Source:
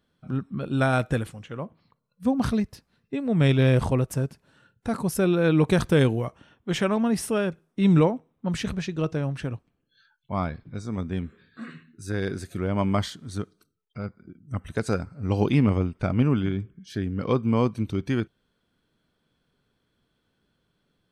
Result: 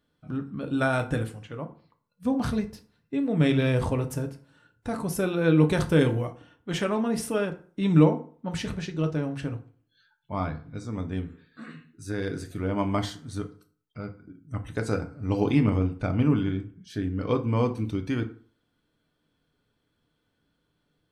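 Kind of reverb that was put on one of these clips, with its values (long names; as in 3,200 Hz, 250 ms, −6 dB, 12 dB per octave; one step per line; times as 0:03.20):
feedback delay network reverb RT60 0.44 s, low-frequency decay 1×, high-frequency decay 0.65×, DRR 5 dB
level −3 dB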